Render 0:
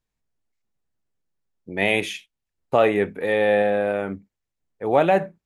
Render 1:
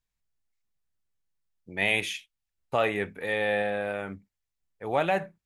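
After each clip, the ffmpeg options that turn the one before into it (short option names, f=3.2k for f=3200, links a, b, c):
-af "equalizer=f=350:w=0.44:g=-9,volume=-1.5dB"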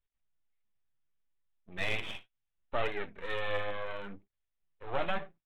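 -af "aresample=8000,aeval=exprs='max(val(0),0)':c=same,aresample=44100,flanger=delay=1.6:depth=8.9:regen=45:speed=0.69:shape=triangular,aeval=exprs='max(val(0),0)':c=same,volume=1.5dB"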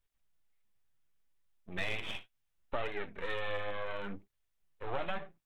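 -af "acompressor=threshold=-38dB:ratio=3,volume=5dB"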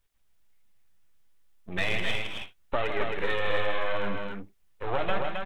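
-af "aecho=1:1:158|267:0.376|0.596,volume=7.5dB"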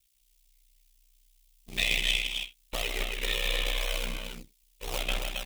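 -filter_complex "[0:a]asplit=2[a][b];[b]acrusher=samples=36:mix=1:aa=0.000001:lfo=1:lforange=36:lforate=2,volume=-10.5dB[c];[a][c]amix=inputs=2:normalize=0,aeval=exprs='val(0)*sin(2*PI*31*n/s)':c=same,aexciter=amount=7.5:drive=5.6:freq=2.3k,volume=-7dB"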